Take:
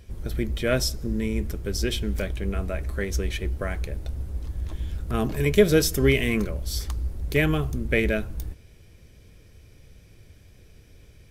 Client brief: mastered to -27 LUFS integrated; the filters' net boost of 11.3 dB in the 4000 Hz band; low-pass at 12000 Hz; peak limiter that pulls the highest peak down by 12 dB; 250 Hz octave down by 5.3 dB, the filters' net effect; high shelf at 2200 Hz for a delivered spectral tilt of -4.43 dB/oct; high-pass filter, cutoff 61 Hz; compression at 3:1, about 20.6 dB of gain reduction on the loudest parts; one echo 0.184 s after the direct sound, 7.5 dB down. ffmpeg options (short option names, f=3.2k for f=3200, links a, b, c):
-af "highpass=61,lowpass=12k,equalizer=f=250:t=o:g=-7.5,highshelf=f=2.2k:g=7,equalizer=f=4k:t=o:g=8.5,acompressor=threshold=-42dB:ratio=3,alimiter=level_in=7.5dB:limit=-24dB:level=0:latency=1,volume=-7.5dB,aecho=1:1:184:0.422,volume=16dB"